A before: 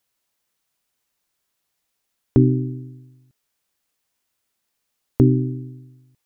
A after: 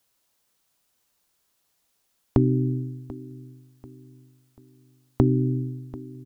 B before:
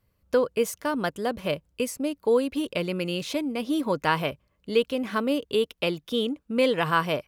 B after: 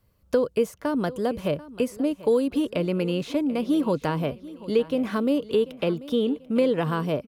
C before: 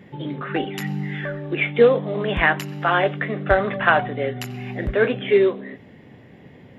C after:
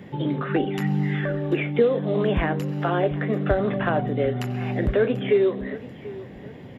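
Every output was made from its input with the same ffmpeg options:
ffmpeg -i in.wav -filter_complex "[0:a]equalizer=frequency=2100:width=1.5:gain=-3.5,acrossover=split=530|2500[link_01][link_02][link_03];[link_01]acompressor=threshold=-23dB:ratio=4[link_04];[link_02]acompressor=threshold=-36dB:ratio=4[link_05];[link_03]acompressor=threshold=-50dB:ratio=4[link_06];[link_04][link_05][link_06]amix=inputs=3:normalize=0,asplit=2[link_07][link_08];[link_08]aecho=0:1:739|1478|2217:0.126|0.0504|0.0201[link_09];[link_07][link_09]amix=inputs=2:normalize=0,volume=4.5dB" out.wav

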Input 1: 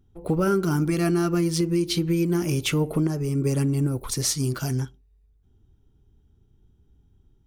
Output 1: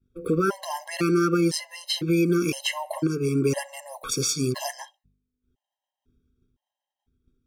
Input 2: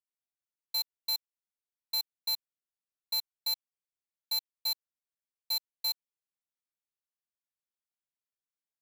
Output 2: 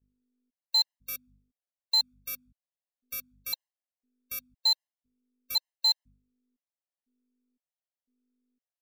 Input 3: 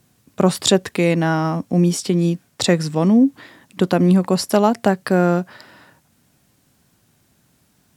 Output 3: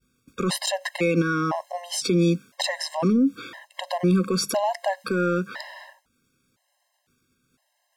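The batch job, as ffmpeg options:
ffmpeg -i in.wav -filter_complex "[0:a]acrossover=split=120[link_01][link_02];[link_01]acompressor=threshold=-49dB:ratio=6[link_03];[link_03][link_02]amix=inputs=2:normalize=0,aeval=exprs='val(0)+0.00251*(sin(2*PI*50*n/s)+sin(2*PI*2*50*n/s)/2+sin(2*PI*3*50*n/s)/3+sin(2*PI*4*50*n/s)/4+sin(2*PI*5*50*n/s)/5)':channel_layout=same,agate=range=-33dB:threshold=-43dB:ratio=3:detection=peak,acontrast=45,asplit=2[link_04][link_05];[link_05]highpass=frequency=720:poles=1,volume=8dB,asoftclip=type=tanh:threshold=-0.5dB[link_06];[link_04][link_06]amix=inputs=2:normalize=0,lowpass=frequency=5000:poles=1,volume=-6dB,bandreject=frequency=50:width_type=h:width=6,bandreject=frequency=100:width_type=h:width=6,bandreject=frequency=150:width_type=h:width=6,bandreject=frequency=200:width_type=h:width=6,alimiter=limit=-13dB:level=0:latency=1:release=73,afftfilt=real='re*gt(sin(2*PI*0.99*pts/sr)*(1-2*mod(floor(b*sr/1024/540),2)),0)':imag='im*gt(sin(2*PI*0.99*pts/sr)*(1-2*mod(floor(b*sr/1024/540),2)),0)':win_size=1024:overlap=0.75" out.wav

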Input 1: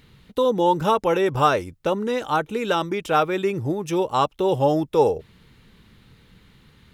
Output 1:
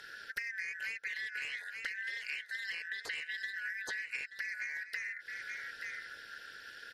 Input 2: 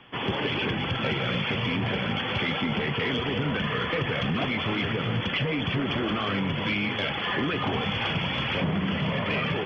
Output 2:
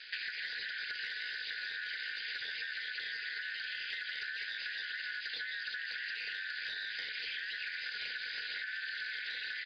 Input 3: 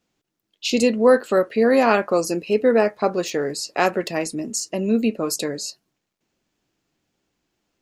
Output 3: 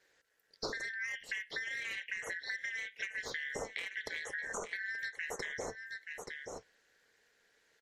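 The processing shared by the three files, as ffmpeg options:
ffmpeg -i in.wav -filter_complex "[0:a]afftfilt=real='real(if(lt(b,272),68*(eq(floor(b/68),0)*3+eq(floor(b/68),1)*0+eq(floor(b/68),2)*1+eq(floor(b/68),3)*2)+mod(b,68),b),0)':imag='imag(if(lt(b,272),68*(eq(floor(b/68),0)*3+eq(floor(b/68),1)*0+eq(floor(b/68),2)*1+eq(floor(b/68),3)*2)+mod(b,68),b),0)':win_size=2048:overlap=0.75,aeval=exprs='0.75*(cos(1*acos(clip(val(0)/0.75,-1,1)))-cos(1*PI/2))+0.133*(cos(5*acos(clip(val(0)/0.75,-1,1)))-cos(5*PI/2))+0.00531*(cos(6*acos(clip(val(0)/0.75,-1,1)))-cos(6*PI/2))':channel_layout=same,aeval=exprs='val(0)*sin(2*PI*110*n/s)':channel_layout=same,acrossover=split=2700|5500[link_01][link_02][link_03];[link_01]acompressor=threshold=-29dB:ratio=4[link_04];[link_02]acompressor=threshold=-36dB:ratio=4[link_05];[link_03]acompressor=threshold=-48dB:ratio=4[link_06];[link_04][link_05][link_06]amix=inputs=3:normalize=0,equalizer=frequency=460:width_type=o:width=0.69:gain=14,asplit=2[link_07][link_08];[link_08]aecho=0:1:878:0.158[link_09];[link_07][link_09]amix=inputs=2:normalize=0,acompressor=threshold=-36dB:ratio=10" -ar 48000 -c:a libmp3lame -b:a 56k out.mp3

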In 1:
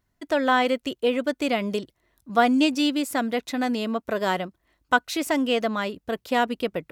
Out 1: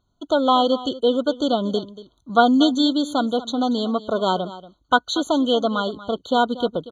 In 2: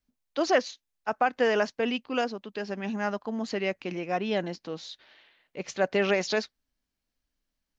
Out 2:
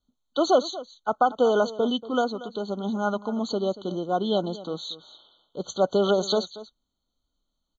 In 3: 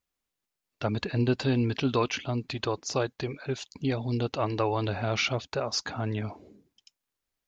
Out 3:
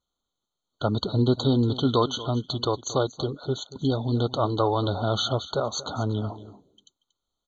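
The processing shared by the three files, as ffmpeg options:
ffmpeg -i in.wav -af "lowpass=frequency=5200:width_type=q:width=1.7,aecho=1:1:234:0.15,afftfilt=real='re*eq(mod(floor(b*sr/1024/1500),2),0)':imag='im*eq(mod(floor(b*sr/1024/1500),2),0)':win_size=1024:overlap=0.75,volume=4dB" out.wav

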